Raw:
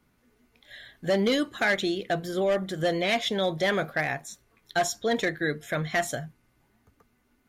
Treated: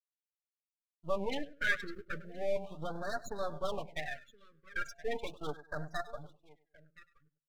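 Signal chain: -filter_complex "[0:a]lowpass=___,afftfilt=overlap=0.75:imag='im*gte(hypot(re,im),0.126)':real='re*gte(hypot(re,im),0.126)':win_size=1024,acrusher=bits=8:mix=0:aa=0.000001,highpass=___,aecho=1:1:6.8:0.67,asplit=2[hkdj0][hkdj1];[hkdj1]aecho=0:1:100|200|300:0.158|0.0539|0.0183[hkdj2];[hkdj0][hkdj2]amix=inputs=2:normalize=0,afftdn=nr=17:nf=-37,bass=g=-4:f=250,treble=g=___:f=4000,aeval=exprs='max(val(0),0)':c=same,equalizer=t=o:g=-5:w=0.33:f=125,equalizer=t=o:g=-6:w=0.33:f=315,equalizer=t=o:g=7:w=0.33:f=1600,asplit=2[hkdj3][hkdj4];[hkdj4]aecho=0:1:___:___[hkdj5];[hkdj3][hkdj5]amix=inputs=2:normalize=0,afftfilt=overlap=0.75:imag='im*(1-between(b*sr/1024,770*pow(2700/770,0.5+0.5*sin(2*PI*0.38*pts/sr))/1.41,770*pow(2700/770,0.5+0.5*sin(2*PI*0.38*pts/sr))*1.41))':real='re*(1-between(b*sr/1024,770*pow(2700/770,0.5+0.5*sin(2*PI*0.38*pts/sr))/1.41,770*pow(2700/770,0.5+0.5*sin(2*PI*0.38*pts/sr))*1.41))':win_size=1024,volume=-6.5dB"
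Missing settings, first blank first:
7000, 46, -2, 1022, 0.0841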